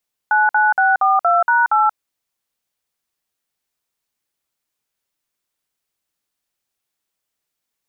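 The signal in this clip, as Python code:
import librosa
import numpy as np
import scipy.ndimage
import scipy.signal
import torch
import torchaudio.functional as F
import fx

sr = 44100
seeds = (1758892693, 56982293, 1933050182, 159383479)

y = fx.dtmf(sr, digits='99642#8', tone_ms=181, gap_ms=53, level_db=-14.0)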